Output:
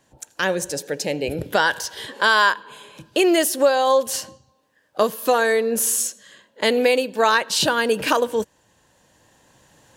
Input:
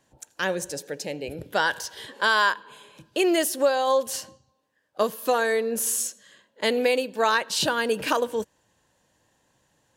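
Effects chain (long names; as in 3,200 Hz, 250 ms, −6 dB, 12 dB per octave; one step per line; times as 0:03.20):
camcorder AGC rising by 5.3 dB per second
level +4.5 dB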